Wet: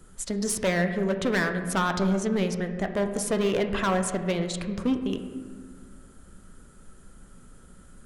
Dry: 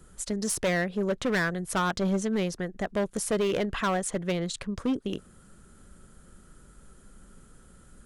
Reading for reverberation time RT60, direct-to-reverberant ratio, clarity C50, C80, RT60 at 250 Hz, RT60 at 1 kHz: 1.7 s, 6.0 dB, 8.5 dB, 10.0 dB, 2.4 s, 1.5 s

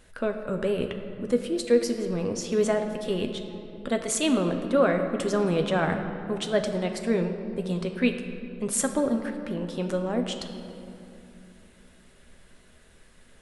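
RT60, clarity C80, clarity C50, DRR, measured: 2.8 s, 8.0 dB, 7.0 dB, 4.5 dB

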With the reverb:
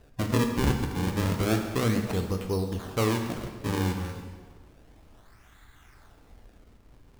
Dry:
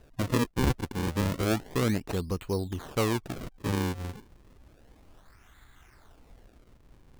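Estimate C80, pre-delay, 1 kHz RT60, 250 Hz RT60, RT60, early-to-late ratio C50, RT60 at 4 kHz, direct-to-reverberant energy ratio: 7.5 dB, 4 ms, 1.5 s, 1.5 s, 1.5 s, 6.0 dB, 1.3 s, 3.5 dB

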